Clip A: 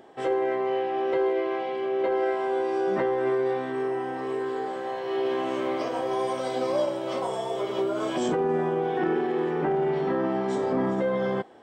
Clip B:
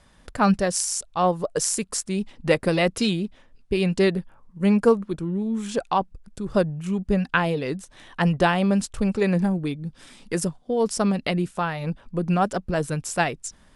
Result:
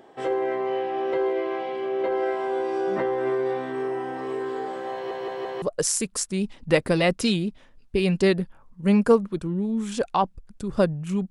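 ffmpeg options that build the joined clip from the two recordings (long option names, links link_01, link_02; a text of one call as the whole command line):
ffmpeg -i cue0.wav -i cue1.wav -filter_complex "[0:a]apad=whole_dur=11.3,atrim=end=11.3,asplit=4[link_01][link_02][link_03][link_04];[link_01]atrim=end=5.112[link_05];[link_02]atrim=start=4.938:end=5.112[link_06];[link_03]atrim=start=4.938:end=5.112[link_07];[link_04]atrim=start=4.938:end=5.112[link_08];[1:a]atrim=start=1.388:end=7.07[link_09];[link_05][link_06]acrossfade=duration=0.004:curve1=hsin:curve2=hsin[link_10];[link_10][link_07]acrossfade=duration=0.004:curve1=hsin:curve2=hsin[link_11];[link_11][link_08]acrossfade=duration=0.004:curve1=hsin:curve2=hsin[link_12];[link_12][link_09]acrossfade=duration=0.004:curve1=hsin:curve2=hsin" out.wav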